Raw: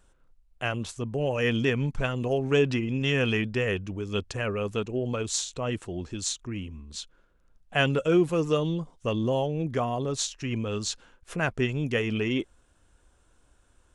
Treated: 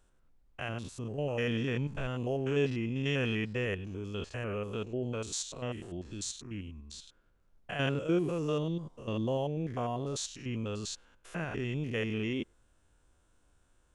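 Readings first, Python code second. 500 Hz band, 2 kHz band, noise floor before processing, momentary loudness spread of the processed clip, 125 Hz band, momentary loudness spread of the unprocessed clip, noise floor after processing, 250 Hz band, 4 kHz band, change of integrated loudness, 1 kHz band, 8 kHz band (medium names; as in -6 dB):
-7.0 dB, -8.0 dB, -64 dBFS, 11 LU, -5.5 dB, 10 LU, -68 dBFS, -6.0 dB, -7.5 dB, -6.5 dB, -7.5 dB, -7.5 dB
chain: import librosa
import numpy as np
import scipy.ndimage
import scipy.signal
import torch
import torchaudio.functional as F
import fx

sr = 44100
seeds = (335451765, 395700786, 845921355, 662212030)

y = fx.spec_steps(x, sr, hold_ms=100)
y = fx.dmg_noise_colour(y, sr, seeds[0], colour='brown', level_db=-68.0)
y = F.gain(torch.from_numpy(y), -5.0).numpy()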